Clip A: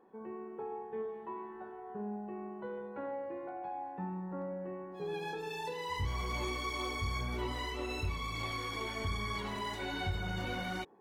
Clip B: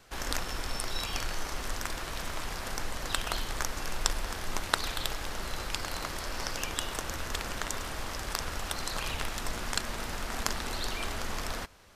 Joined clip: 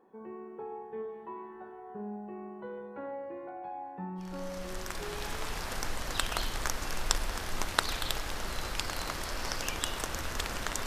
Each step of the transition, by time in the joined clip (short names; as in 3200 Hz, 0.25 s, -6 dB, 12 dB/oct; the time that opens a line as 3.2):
clip A
5.02 switch to clip B from 1.97 s, crossfade 1.74 s equal-power